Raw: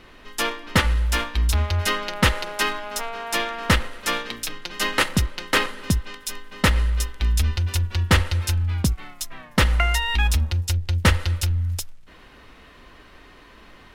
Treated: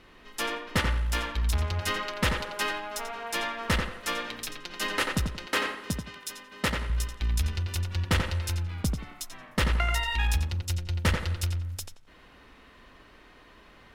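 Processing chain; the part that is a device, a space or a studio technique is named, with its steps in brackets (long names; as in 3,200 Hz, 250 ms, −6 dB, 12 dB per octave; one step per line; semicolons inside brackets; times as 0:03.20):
rockabilly slapback (tube saturation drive 10 dB, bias 0.4; tape delay 88 ms, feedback 34%, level −3 dB, low-pass 2,700 Hz)
0:05.46–0:06.90: high-pass filter 140 Hz 6 dB per octave
level −5.5 dB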